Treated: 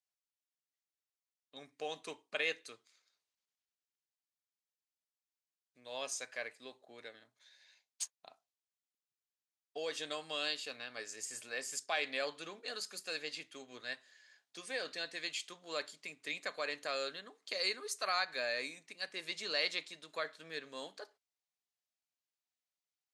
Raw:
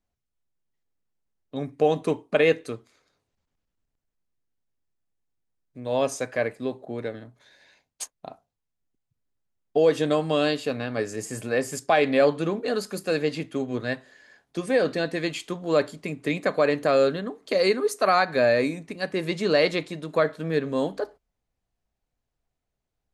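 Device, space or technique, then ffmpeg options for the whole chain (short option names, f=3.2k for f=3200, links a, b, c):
piezo pickup straight into a mixer: -af "lowpass=5.7k,aderivative,volume=1.5dB"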